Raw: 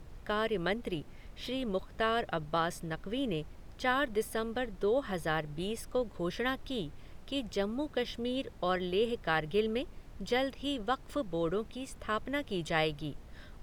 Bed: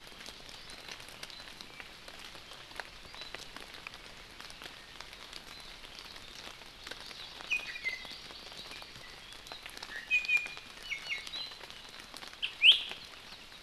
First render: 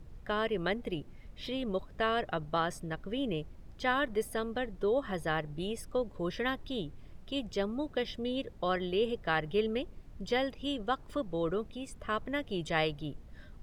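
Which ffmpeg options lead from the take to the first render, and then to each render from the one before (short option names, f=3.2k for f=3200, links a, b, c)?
-af "afftdn=nr=7:nf=-51"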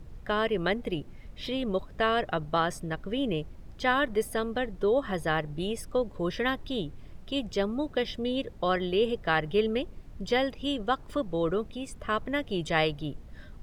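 -af "volume=4.5dB"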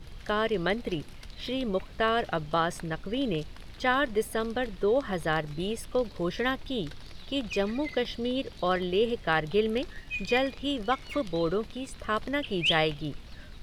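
-filter_complex "[1:a]volume=-5.5dB[a];[0:a][a]amix=inputs=2:normalize=0"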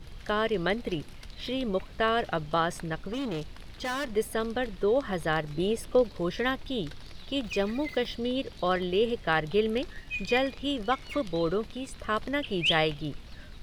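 -filter_complex "[0:a]asettb=1/sr,asplit=3[a][b][c];[a]atrim=end=3.074[d];[b]atrim=start=3.07:end=4.09,asetpts=PTS-STARTPTS,afade=t=in:d=0.004:c=qsin,afade=t=out:st=1.016:d=0.004:c=qsin,volume=29dB,asoftclip=hard,volume=-29dB[e];[c]atrim=start=4.086[f];[d][e]acrossfade=d=0.004:c1=hsin:c2=qsin[g];[g][f]acrossfade=d=0.004:c1=qsin:c2=hsin,asettb=1/sr,asplit=3[h][i][j];[h]atrim=end=5.544[k];[i]atrim=start=5.54:end=6.04,asetpts=PTS-STARTPTS,afade=t=in:d=0.004:c=qsin,afade=t=out:st=0.496:d=0.004:c=qsin,equalizer=f=400:w=0.77:g=5.5[l];[j]atrim=start=6.036[m];[k][l]acrossfade=d=0.004:c1=hsin:c2=qsin[n];[n][m]acrossfade=d=0.004:c1=qsin:c2=hsin,asettb=1/sr,asplit=3[o][p][q];[o]atrim=end=7.444[r];[p]atrim=start=7.44:end=8.14,asetpts=PTS-STARTPTS,afade=t=in:d=0.004:c=qsin,afade=t=out:st=0.696:d=0.004:c=qsin,aeval=exprs='val(0)*gte(abs(val(0)),0.00299)':c=same[s];[q]atrim=start=8.136[t];[r][s]acrossfade=d=0.004:c1=hsin:c2=qsin[u];[u][t]acrossfade=d=0.004:c1=qsin:c2=hsin"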